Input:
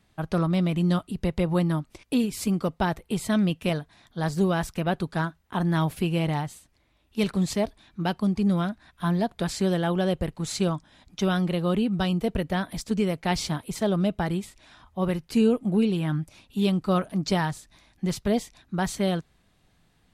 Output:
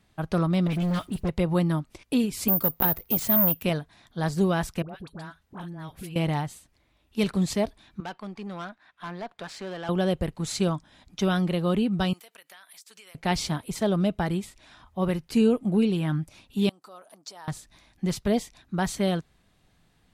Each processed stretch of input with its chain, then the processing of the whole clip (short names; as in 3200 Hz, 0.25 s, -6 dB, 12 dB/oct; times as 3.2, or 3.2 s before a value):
0.67–1.29 G.711 law mismatch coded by mu + dispersion highs, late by 44 ms, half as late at 2000 Hz + hard clip -23 dBFS
2.48–3.63 careless resampling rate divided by 3×, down none, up zero stuff + core saturation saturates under 1800 Hz
4.82–6.16 compressor 4:1, threshold -38 dBFS + dispersion highs, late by 75 ms, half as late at 1000 Hz
8–9.89 band-pass 1500 Hz, Q 0.59 + tube stage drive 30 dB, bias 0.4
12.13–13.15 HPF 1300 Hz + high shelf 9000 Hz +11.5 dB + compressor, threshold -47 dBFS
16.69–17.48 bell 2300 Hz -10.5 dB 1.7 oct + compressor, threshold -34 dBFS + HPF 740 Hz
whole clip: dry